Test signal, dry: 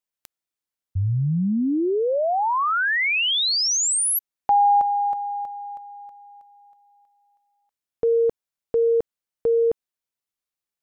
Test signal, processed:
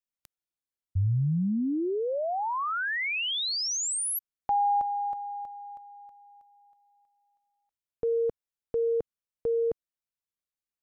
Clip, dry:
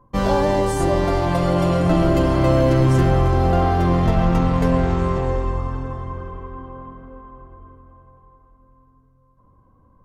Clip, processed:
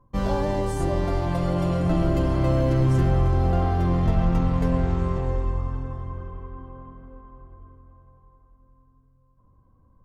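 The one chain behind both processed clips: bass shelf 180 Hz +7.5 dB; trim -8.5 dB

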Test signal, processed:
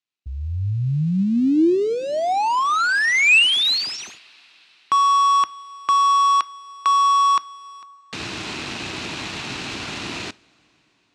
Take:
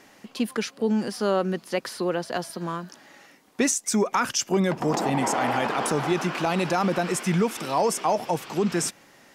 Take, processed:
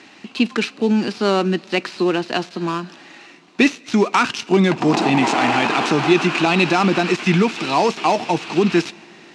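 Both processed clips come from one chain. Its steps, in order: dead-time distortion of 0.071 ms; cabinet simulation 110–7300 Hz, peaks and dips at 320 Hz +6 dB, 530 Hz -8 dB, 2.6 kHz +9 dB, 4 kHz +6 dB; two-slope reverb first 0.3 s, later 4.7 s, from -19 dB, DRR 18 dB; trim +7 dB

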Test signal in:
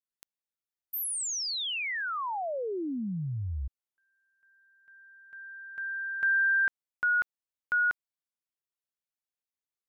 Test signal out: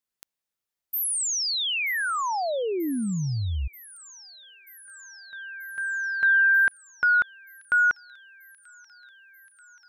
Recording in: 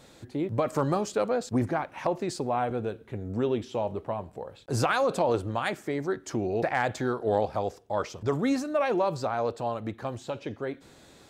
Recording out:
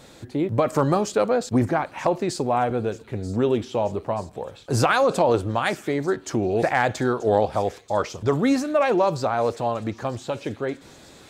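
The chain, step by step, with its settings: feedback echo behind a high-pass 934 ms, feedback 77%, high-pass 3.7 kHz, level -15 dB; trim +6 dB

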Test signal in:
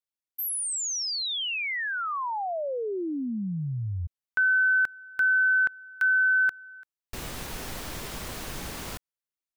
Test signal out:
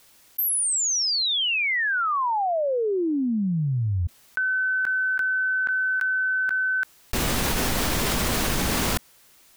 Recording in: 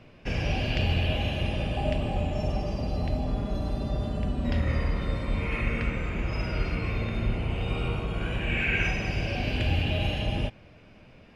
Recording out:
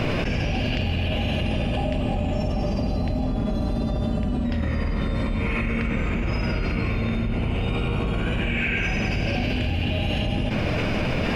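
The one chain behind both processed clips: dynamic bell 230 Hz, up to +6 dB, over -49 dBFS, Q 2.7; level flattener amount 100%; trim -2 dB

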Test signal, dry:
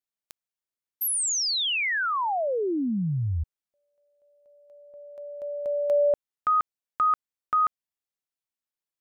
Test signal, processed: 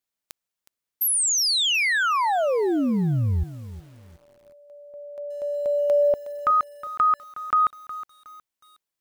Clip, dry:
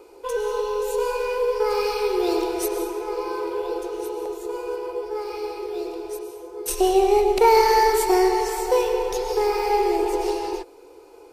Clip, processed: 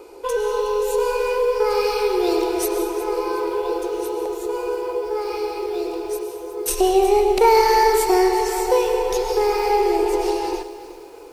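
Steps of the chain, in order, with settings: in parallel at -1 dB: compression 16:1, threshold -27 dBFS; on the sum: bit-crushed delay 365 ms, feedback 35%, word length 7-bit, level -14.5 dB

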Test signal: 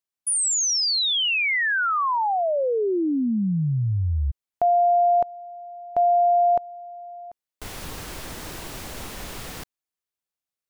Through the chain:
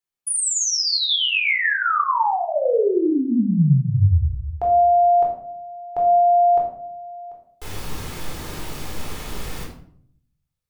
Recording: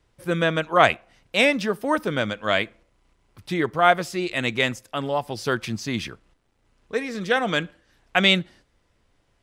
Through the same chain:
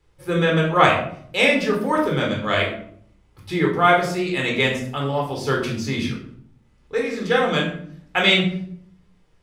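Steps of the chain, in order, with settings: simulated room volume 970 m³, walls furnished, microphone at 4.1 m; trim -3 dB

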